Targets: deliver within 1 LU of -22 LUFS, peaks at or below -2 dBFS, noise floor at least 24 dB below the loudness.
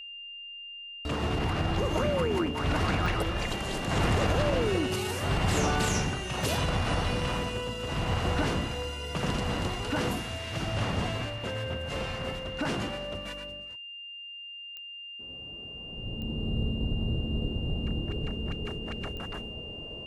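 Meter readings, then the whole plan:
clicks 5; steady tone 2800 Hz; tone level -40 dBFS; loudness -31.0 LUFS; peak -16.0 dBFS; loudness target -22.0 LUFS
-> de-click; notch 2800 Hz, Q 30; gain +9 dB

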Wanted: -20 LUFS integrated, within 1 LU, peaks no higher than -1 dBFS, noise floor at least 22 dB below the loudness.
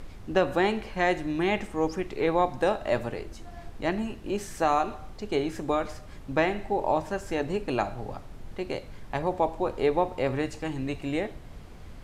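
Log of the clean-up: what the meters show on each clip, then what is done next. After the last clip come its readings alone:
noise floor -44 dBFS; noise floor target -51 dBFS; loudness -28.5 LUFS; peak -11.0 dBFS; loudness target -20.0 LUFS
-> noise print and reduce 7 dB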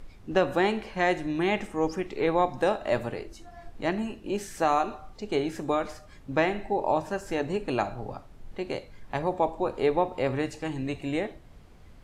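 noise floor -50 dBFS; noise floor target -51 dBFS
-> noise print and reduce 6 dB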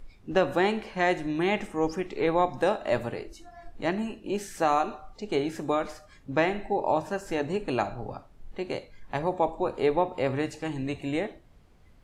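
noise floor -55 dBFS; loudness -28.5 LUFS; peak -11.5 dBFS; loudness target -20.0 LUFS
-> gain +8.5 dB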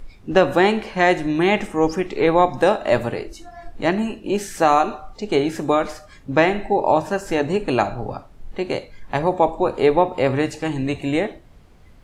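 loudness -20.0 LUFS; peak -3.0 dBFS; noise floor -46 dBFS

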